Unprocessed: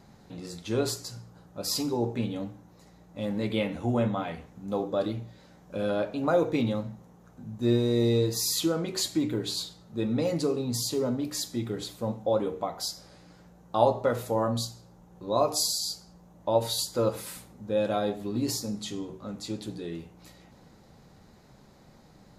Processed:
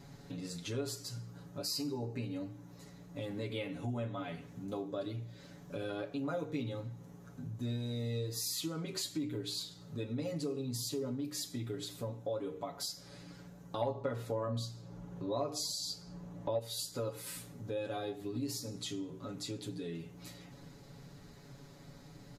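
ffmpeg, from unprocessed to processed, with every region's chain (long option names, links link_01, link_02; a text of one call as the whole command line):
ffmpeg -i in.wav -filter_complex "[0:a]asettb=1/sr,asplit=3[link_01][link_02][link_03];[link_01]atrim=end=1.634[link_04];[link_02]atrim=start=1.63:end=2.51,asetpts=PTS-STARTPTS,afade=type=in:duration=0.004:curve=qsin,afade=type=out:start_time=0.876:duration=0.004:curve=qsin,asuperstop=centerf=3400:order=4:qfactor=6.2,equalizer=frequency=4600:width=6.6:gain=6.5[link_05];[link_03]atrim=start=2.506[link_06];[link_04][link_05]acrossfade=duration=0.004:curve1=hsin:curve2=qsin[link_07];[link_07][link_06]acrossfade=duration=0.004:curve1=qsin:curve2=hsin,asettb=1/sr,asplit=3[link_08][link_09][link_10];[link_08]atrim=end=13.814[link_11];[link_09]atrim=start=13.81:end=16.59,asetpts=PTS-STARTPTS,afade=type=in:duration=0.004:curve=qsin,afade=type=out:start_time=2.776:duration=0.004:curve=qsin,lowpass=frequency=3100:poles=1,acontrast=37[link_12];[link_10]atrim=start=16.586[link_13];[link_11][link_12]acrossfade=duration=0.004:curve1=hsin:curve2=qsin[link_14];[link_14][link_13]acrossfade=duration=0.004:curve1=qsin:curve2=hsin,equalizer=frequency=810:width=1.1:gain=-5.5,aecho=1:1:7.1:0.89,acompressor=threshold=-41dB:ratio=2.5" out.wav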